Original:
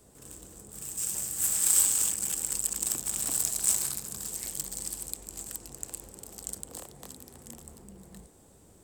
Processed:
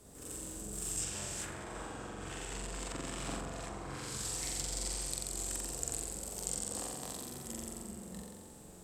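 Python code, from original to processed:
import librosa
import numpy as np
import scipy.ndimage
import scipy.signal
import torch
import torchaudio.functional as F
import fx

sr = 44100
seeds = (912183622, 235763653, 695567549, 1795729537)

y = fx.room_flutter(x, sr, wall_m=7.6, rt60_s=1.4)
y = fx.env_lowpass_down(y, sr, base_hz=1100.0, full_db=-19.5)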